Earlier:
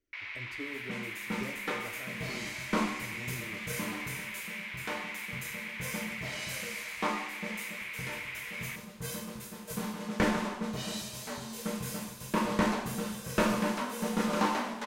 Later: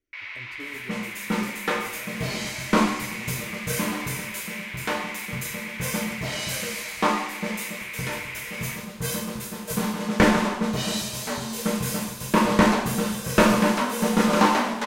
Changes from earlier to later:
first sound: send +11.0 dB; second sound +10.0 dB

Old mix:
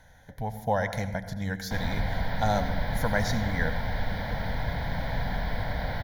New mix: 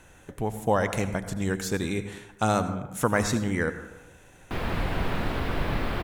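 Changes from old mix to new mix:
background: entry +2.80 s; master: remove fixed phaser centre 1800 Hz, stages 8

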